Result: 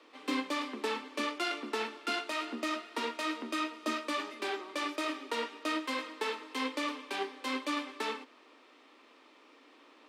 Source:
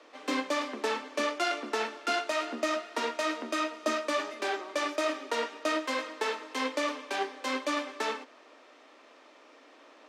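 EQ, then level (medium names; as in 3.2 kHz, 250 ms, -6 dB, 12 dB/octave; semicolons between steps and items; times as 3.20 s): fifteen-band graphic EQ 630 Hz -10 dB, 1.6 kHz -5 dB, 6.3 kHz -7 dB; 0.0 dB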